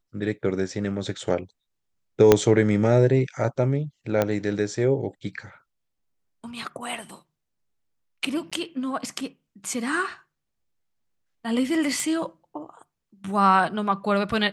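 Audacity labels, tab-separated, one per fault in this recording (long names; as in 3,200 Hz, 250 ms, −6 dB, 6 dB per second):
2.320000	2.320000	click −1 dBFS
4.220000	4.220000	click −9 dBFS
8.500000	8.520000	drop-out
12.000000	12.000000	click −16 dBFS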